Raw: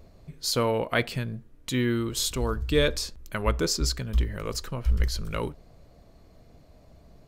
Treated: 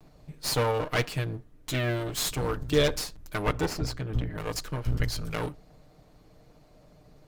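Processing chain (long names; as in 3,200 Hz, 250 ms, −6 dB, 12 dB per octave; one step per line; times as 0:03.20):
lower of the sound and its delayed copy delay 6.6 ms
0:03.66–0:04.38: high-shelf EQ 3,200 Hz −11.5 dB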